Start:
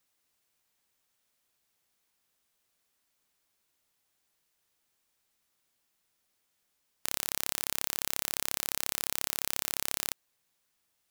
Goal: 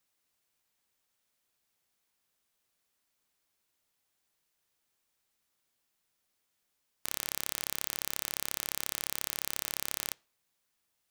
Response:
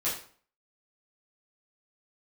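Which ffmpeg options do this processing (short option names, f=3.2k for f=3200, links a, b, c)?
-filter_complex "[0:a]asplit=2[a][b];[1:a]atrim=start_sample=2205,lowpass=5.5k[c];[b][c]afir=irnorm=-1:irlink=0,volume=-29.5dB[d];[a][d]amix=inputs=2:normalize=0,volume=-2.5dB"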